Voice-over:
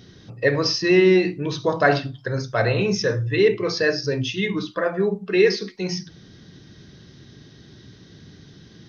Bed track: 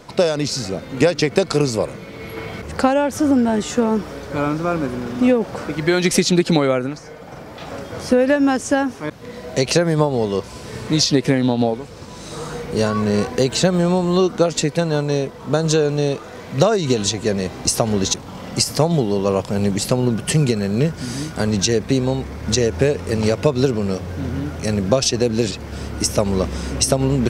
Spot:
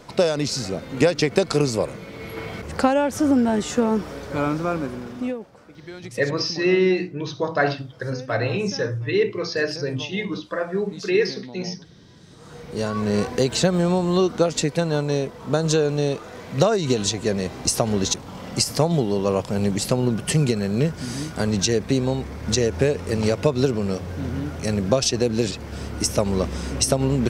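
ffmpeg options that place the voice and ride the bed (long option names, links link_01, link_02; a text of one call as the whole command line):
ffmpeg -i stem1.wav -i stem2.wav -filter_complex "[0:a]adelay=5750,volume=-3dB[link_01];[1:a]volume=16dB,afade=type=out:start_time=4.56:duration=0.95:silence=0.112202,afade=type=in:start_time=12.37:duration=0.8:silence=0.11885[link_02];[link_01][link_02]amix=inputs=2:normalize=0" out.wav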